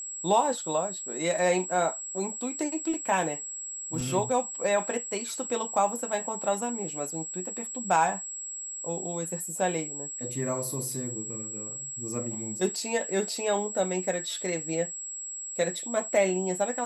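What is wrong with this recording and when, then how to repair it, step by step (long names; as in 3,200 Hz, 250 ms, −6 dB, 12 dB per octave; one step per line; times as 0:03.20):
whistle 7,700 Hz −35 dBFS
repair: notch filter 7,700 Hz, Q 30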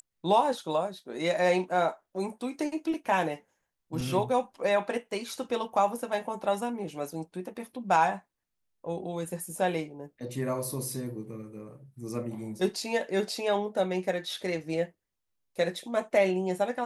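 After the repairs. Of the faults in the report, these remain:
none of them is left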